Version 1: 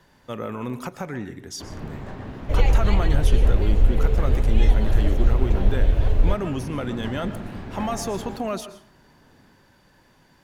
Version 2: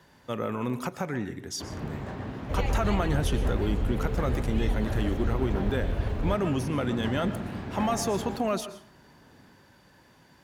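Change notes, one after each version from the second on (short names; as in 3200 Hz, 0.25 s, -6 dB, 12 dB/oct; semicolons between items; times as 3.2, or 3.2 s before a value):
second sound -6.0 dB; master: add HPF 52 Hz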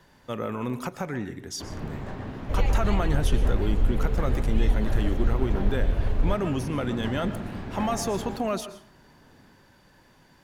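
master: remove HPF 52 Hz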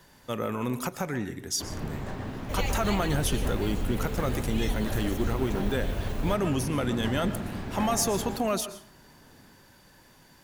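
second sound: add tilt +2 dB/oct; master: add high shelf 5900 Hz +11.5 dB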